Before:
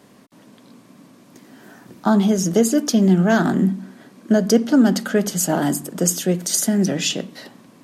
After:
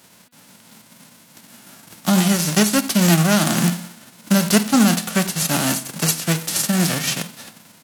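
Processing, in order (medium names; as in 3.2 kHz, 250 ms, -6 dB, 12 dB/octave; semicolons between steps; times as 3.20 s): formants flattened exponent 0.3; pitch shift -1.5 st; de-hum 243.4 Hz, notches 19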